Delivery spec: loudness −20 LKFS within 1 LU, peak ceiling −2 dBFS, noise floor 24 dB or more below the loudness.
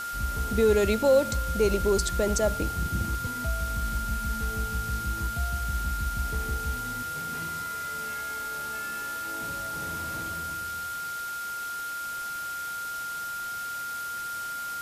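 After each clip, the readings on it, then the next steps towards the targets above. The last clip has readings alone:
interfering tone 1,400 Hz; level of the tone −32 dBFS; background noise floor −34 dBFS; target noise floor −54 dBFS; integrated loudness −29.5 LKFS; sample peak −11.0 dBFS; target loudness −20.0 LKFS
→ notch filter 1,400 Hz, Q 30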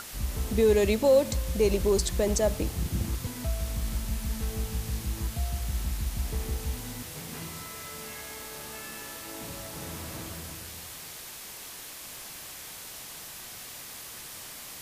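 interfering tone none found; background noise floor −43 dBFS; target noise floor −56 dBFS
→ broadband denoise 13 dB, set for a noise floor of −43 dBFS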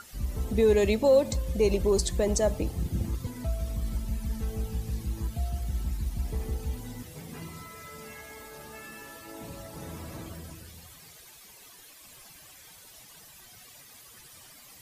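background noise floor −52 dBFS; target noise floor −53 dBFS
→ broadband denoise 6 dB, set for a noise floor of −52 dBFS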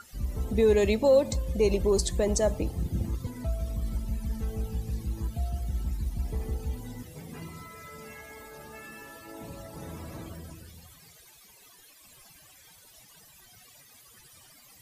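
background noise floor −55 dBFS; integrated loudness −29.0 LKFS; sample peak −12.0 dBFS; target loudness −20.0 LKFS
→ level +9 dB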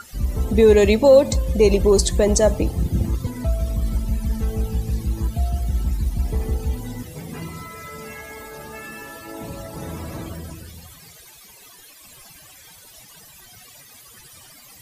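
integrated loudness −20.0 LKFS; sample peak −3.0 dBFS; background noise floor −46 dBFS

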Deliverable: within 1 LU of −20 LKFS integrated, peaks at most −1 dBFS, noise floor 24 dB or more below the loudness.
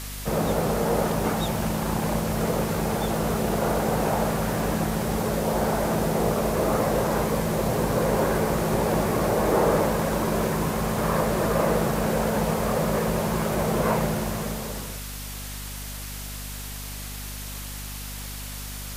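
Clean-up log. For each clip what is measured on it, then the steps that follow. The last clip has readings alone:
mains hum 50 Hz; hum harmonics up to 250 Hz; level of the hum −35 dBFS; background noise floor −35 dBFS; target noise floor −50 dBFS; integrated loudness −25.5 LKFS; sample peak −10.0 dBFS; target loudness −20.0 LKFS
→ mains-hum notches 50/100/150/200/250 Hz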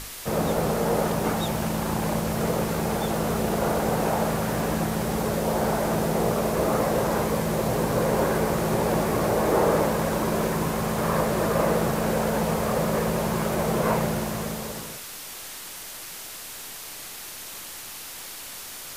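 mains hum none found; background noise floor −39 dBFS; target noise floor −50 dBFS
→ broadband denoise 11 dB, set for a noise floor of −39 dBFS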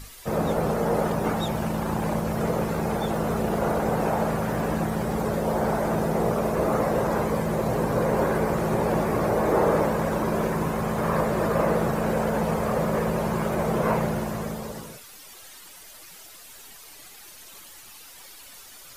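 background noise floor −46 dBFS; target noise floor −49 dBFS
→ broadband denoise 6 dB, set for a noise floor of −46 dBFS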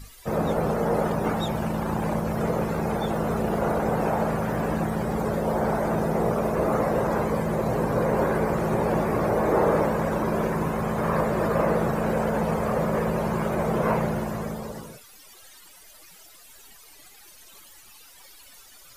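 background noise floor −50 dBFS; integrated loudness −25.0 LKFS; sample peak −10.5 dBFS; target loudness −20.0 LKFS
→ level +5 dB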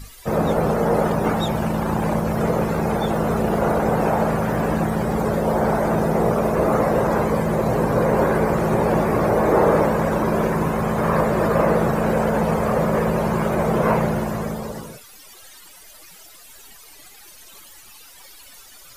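integrated loudness −20.0 LKFS; sample peak −5.5 dBFS; background noise floor −45 dBFS

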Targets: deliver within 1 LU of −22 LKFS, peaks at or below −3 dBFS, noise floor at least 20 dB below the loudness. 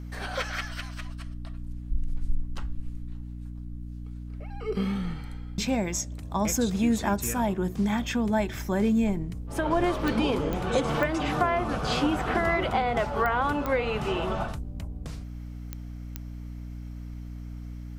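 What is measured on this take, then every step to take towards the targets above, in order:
number of clicks 7; mains hum 60 Hz; hum harmonics up to 300 Hz; level of the hum −35 dBFS; integrated loudness −28.0 LKFS; sample peak −10.5 dBFS; target loudness −22.0 LKFS
→ click removal
mains-hum notches 60/120/180/240/300 Hz
level +6 dB

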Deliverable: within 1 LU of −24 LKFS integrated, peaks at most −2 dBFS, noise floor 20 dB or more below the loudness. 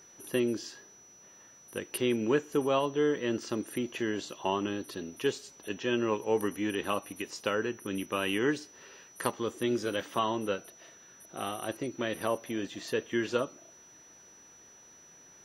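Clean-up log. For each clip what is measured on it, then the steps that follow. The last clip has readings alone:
interfering tone 5,900 Hz; level of the tone −54 dBFS; integrated loudness −32.5 LKFS; sample peak −13.5 dBFS; target loudness −24.0 LKFS
→ notch filter 5,900 Hz, Q 30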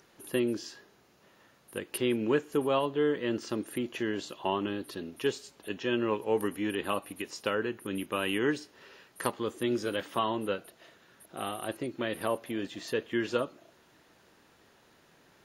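interfering tone none found; integrated loudness −32.5 LKFS; sample peak −13.5 dBFS; target loudness −24.0 LKFS
→ level +8.5 dB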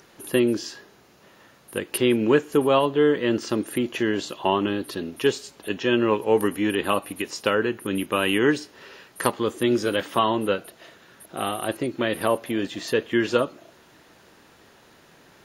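integrated loudness −24.0 LKFS; sample peak −5.0 dBFS; background noise floor −54 dBFS

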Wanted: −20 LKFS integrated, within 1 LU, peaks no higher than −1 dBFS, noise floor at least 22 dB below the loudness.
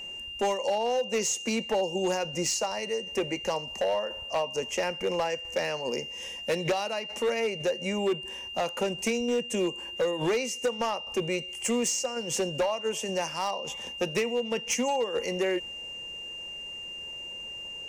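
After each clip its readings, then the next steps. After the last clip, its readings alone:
share of clipped samples 1.8%; peaks flattened at −21.5 dBFS; interfering tone 2,800 Hz; level of the tone −37 dBFS; integrated loudness −30.0 LKFS; sample peak −21.5 dBFS; target loudness −20.0 LKFS
→ clipped peaks rebuilt −21.5 dBFS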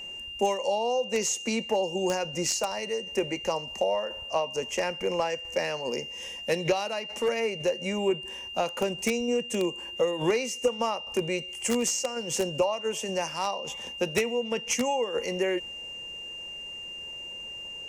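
share of clipped samples 0.0%; interfering tone 2,800 Hz; level of the tone −37 dBFS
→ notch filter 2,800 Hz, Q 30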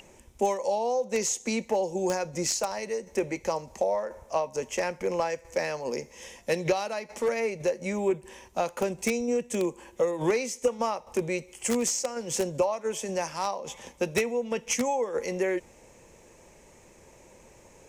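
interfering tone none found; integrated loudness −29.5 LKFS; sample peak −12.0 dBFS; target loudness −20.0 LKFS
→ level +9.5 dB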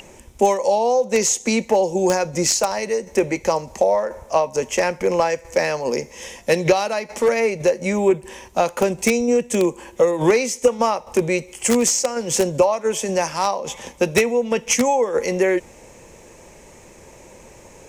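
integrated loudness −20.0 LKFS; sample peak −2.5 dBFS; background noise floor −46 dBFS

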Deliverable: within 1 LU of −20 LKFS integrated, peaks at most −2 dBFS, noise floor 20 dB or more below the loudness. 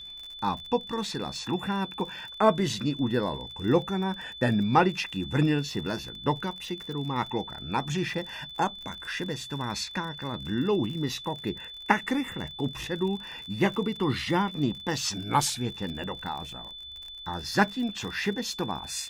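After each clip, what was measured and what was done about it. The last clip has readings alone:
crackle rate 45 per second; interfering tone 3,500 Hz; level of the tone −40 dBFS; integrated loudness −29.0 LKFS; sample peak −5.5 dBFS; target loudness −20.0 LKFS
→ click removal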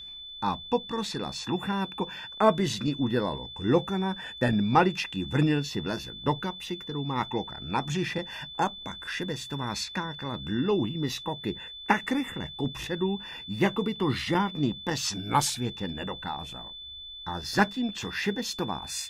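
crackle rate 0.10 per second; interfering tone 3,500 Hz; level of the tone −40 dBFS
→ notch filter 3,500 Hz, Q 30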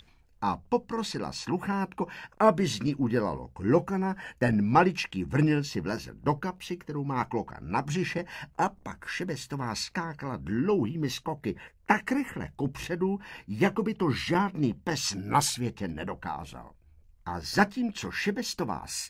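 interfering tone none found; integrated loudness −29.5 LKFS; sample peak −6.5 dBFS; target loudness −20.0 LKFS
→ level +9.5 dB
brickwall limiter −2 dBFS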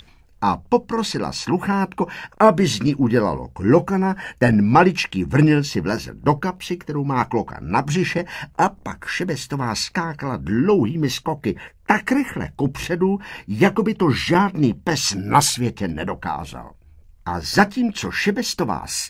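integrated loudness −20.5 LKFS; sample peak −2.0 dBFS; background noise floor −51 dBFS

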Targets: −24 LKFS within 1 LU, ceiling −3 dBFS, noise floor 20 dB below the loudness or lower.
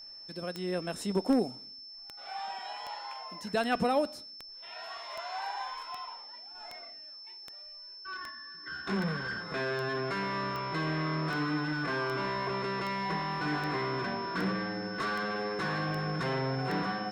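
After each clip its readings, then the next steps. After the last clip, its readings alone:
number of clicks 22; interfering tone 5,300 Hz; level of the tone −45 dBFS; integrated loudness −33.5 LKFS; sample peak −15.0 dBFS; target loudness −24.0 LKFS
→ click removal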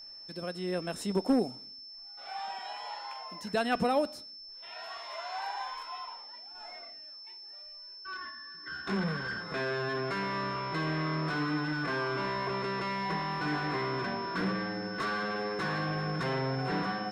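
number of clicks 0; interfering tone 5,300 Hz; level of the tone −45 dBFS
→ notch filter 5,300 Hz, Q 30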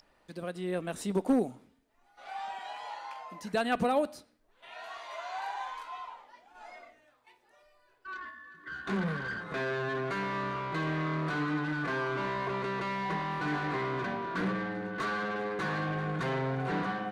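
interfering tone none found; integrated loudness −33.5 LKFS; sample peak −18.5 dBFS; target loudness −24.0 LKFS
→ level +9.5 dB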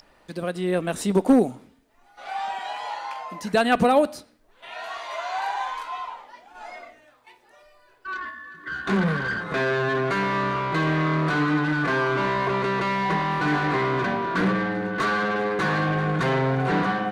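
integrated loudness −24.0 LKFS; sample peak −9.0 dBFS; background noise floor −58 dBFS

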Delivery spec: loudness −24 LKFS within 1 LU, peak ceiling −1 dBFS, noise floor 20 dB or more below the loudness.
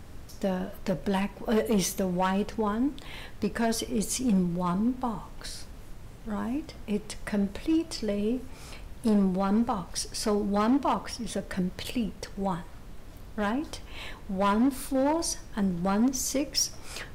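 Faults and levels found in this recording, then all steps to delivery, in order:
share of clipped samples 1.6%; peaks flattened at −19.5 dBFS; background noise floor −45 dBFS; target noise floor −49 dBFS; integrated loudness −29.0 LKFS; sample peak −19.5 dBFS; target loudness −24.0 LKFS
→ clipped peaks rebuilt −19.5 dBFS
noise reduction from a noise print 6 dB
level +5 dB

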